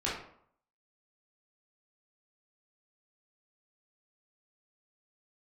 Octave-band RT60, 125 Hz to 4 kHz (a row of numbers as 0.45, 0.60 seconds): 0.65, 0.65, 0.65, 0.65, 0.50, 0.40 seconds